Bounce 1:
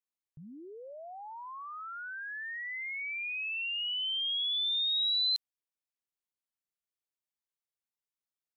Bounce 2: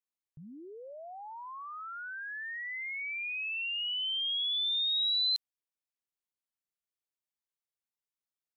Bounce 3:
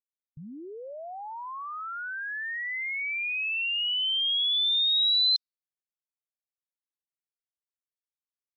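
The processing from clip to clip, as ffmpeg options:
ffmpeg -i in.wav -af anull out.wav
ffmpeg -i in.wav -af "afftdn=noise_reduction=33:noise_floor=-52,volume=6dB" out.wav

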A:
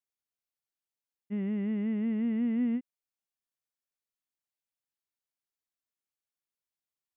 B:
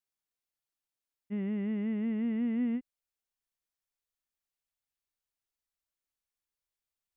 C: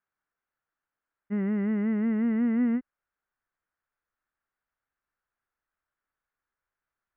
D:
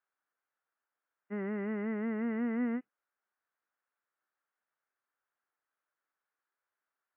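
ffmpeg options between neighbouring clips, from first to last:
ffmpeg -i in.wav -af "asubboost=boost=4.5:cutoff=77" out.wav
ffmpeg -i in.wav -af "lowpass=frequency=1500:width_type=q:width=3,volume=5.5dB" out.wav
ffmpeg -i in.wav -af "highpass=350,lowpass=2600" -ar 12000 -c:a libmp3lame -b:a 24k out.mp3

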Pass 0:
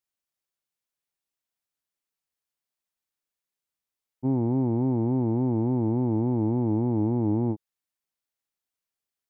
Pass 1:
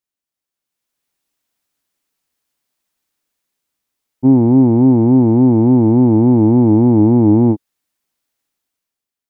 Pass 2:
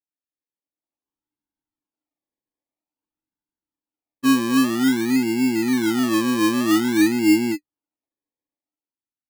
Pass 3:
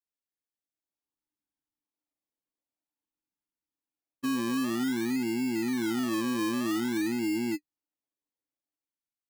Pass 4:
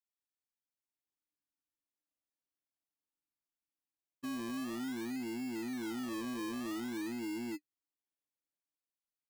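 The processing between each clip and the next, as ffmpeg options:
ffmpeg -i in.wav -af "equalizer=frequency=270:width_type=o:width=0.52:gain=5.5,dynaudnorm=framelen=180:gausssize=9:maxgain=12.5dB,volume=1dB" out.wav
ffmpeg -i in.wav -filter_complex "[0:a]asplit=3[link_01][link_02][link_03];[link_01]bandpass=frequency=300:width_type=q:width=8,volume=0dB[link_04];[link_02]bandpass=frequency=870:width_type=q:width=8,volume=-6dB[link_05];[link_03]bandpass=frequency=2240:width_type=q:width=8,volume=-9dB[link_06];[link_04][link_05][link_06]amix=inputs=3:normalize=0,acrusher=samples=25:mix=1:aa=0.000001:lfo=1:lforange=15:lforate=0.51" out.wav
ffmpeg -i in.wav -af "alimiter=limit=-19dB:level=0:latency=1:release=29,volume=-5.5dB" out.wav
ffmpeg -i in.wav -af "asoftclip=type=tanh:threshold=-28dB,volume=-7dB" out.wav

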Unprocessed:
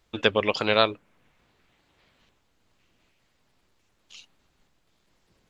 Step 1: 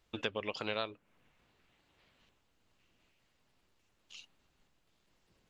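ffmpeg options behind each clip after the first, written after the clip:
ffmpeg -i in.wav -af "acompressor=threshold=-31dB:ratio=2.5,equalizer=frequency=2800:width=7:gain=3.5,volume=-6dB" out.wav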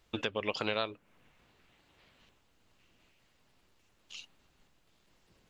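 ffmpeg -i in.wav -af "alimiter=limit=-21.5dB:level=0:latency=1:release=245,volume=5dB" out.wav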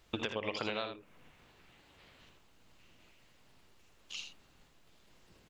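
ffmpeg -i in.wav -af "acompressor=threshold=-37dB:ratio=4,aecho=1:1:58|80:0.211|0.398,volume=3.5dB" out.wav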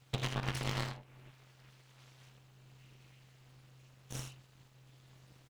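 ffmpeg -i in.wav -filter_complex "[0:a]asplit=2[link_01][link_02];[link_02]adelay=41,volume=-12.5dB[link_03];[link_01][link_03]amix=inputs=2:normalize=0,aeval=exprs='abs(val(0))':channel_layout=same,aeval=exprs='val(0)*sin(2*PI*130*n/s)':channel_layout=same,volume=4dB" out.wav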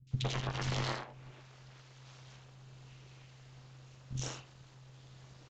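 ffmpeg -i in.wav -filter_complex "[0:a]acrossover=split=250|2400[link_01][link_02][link_03];[link_03]adelay=70[link_04];[link_02]adelay=110[link_05];[link_01][link_05][link_04]amix=inputs=3:normalize=0,aresample=16000,aresample=44100,alimiter=level_in=4.5dB:limit=-24dB:level=0:latency=1:release=386,volume=-4.5dB,volume=6dB" out.wav

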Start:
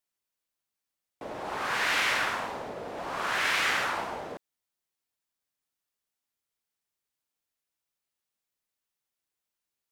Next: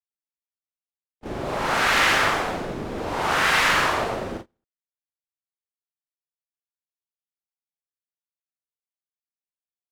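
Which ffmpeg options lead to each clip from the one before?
ffmpeg -i in.wav -af "afreqshift=-240,aecho=1:1:40|86|138.9|199.7|269.7:0.631|0.398|0.251|0.158|0.1,agate=range=-29dB:threshold=-39dB:ratio=16:detection=peak,volume=5.5dB" out.wav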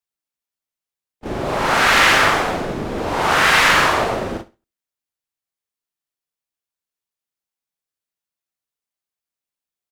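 ffmpeg -i in.wav -af "aecho=1:1:67|134:0.112|0.0269,volume=6dB" out.wav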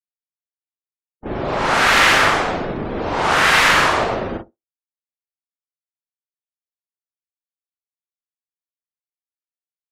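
ffmpeg -i in.wav -af "afftdn=noise_reduction=31:noise_floor=-42" out.wav

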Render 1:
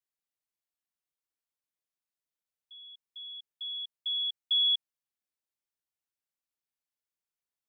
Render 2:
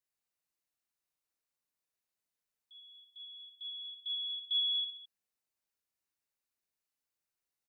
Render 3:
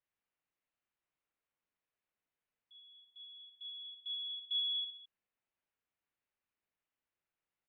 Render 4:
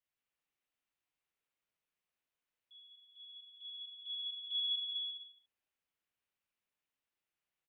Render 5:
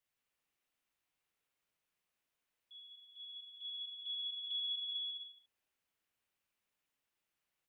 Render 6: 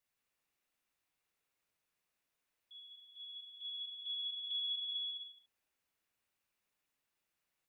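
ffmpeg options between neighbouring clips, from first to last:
ffmpeg -i in.wav -filter_complex "[0:a]bandreject=frequency=3300:width=12,asplit=2[link_01][link_02];[link_02]aecho=0:1:40|88|145.6|214.7|297.7:0.631|0.398|0.251|0.158|0.1[link_03];[link_01][link_03]amix=inputs=2:normalize=0" out.wav
ffmpeg -i in.wav -af "lowpass=frequency=3000:width=0.5412,lowpass=frequency=3000:width=1.3066,volume=2dB" out.wav
ffmpeg -i in.wav -filter_complex "[0:a]equalizer=frequency=3000:width_type=o:width=0.94:gain=5,asplit=2[link_01][link_02];[link_02]aecho=0:1:160|264|331.6|375.5|404.1:0.631|0.398|0.251|0.158|0.1[link_03];[link_01][link_03]amix=inputs=2:normalize=0,volume=-4dB" out.wav
ffmpeg -i in.wav -af "acompressor=threshold=-44dB:ratio=2.5,volume=3.5dB" out.wav
ffmpeg -i in.wav -af "bandreject=frequency=3100:width=19,volume=1dB" out.wav

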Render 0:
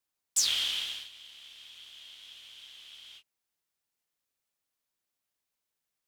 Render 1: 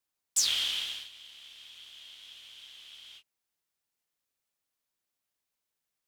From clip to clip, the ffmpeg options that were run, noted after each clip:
ffmpeg -i in.wav -af anull out.wav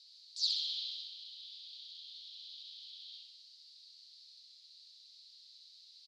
ffmpeg -i in.wav -af "aeval=exprs='val(0)+0.5*0.0106*sgn(val(0))':channel_layout=same,asuperpass=centerf=4300:order=4:qfactor=4.2,aecho=1:1:65|130|195|260|325|390|455|520|585:0.596|0.357|0.214|0.129|0.0772|0.0463|0.0278|0.0167|0.01,volume=-1dB" out.wav

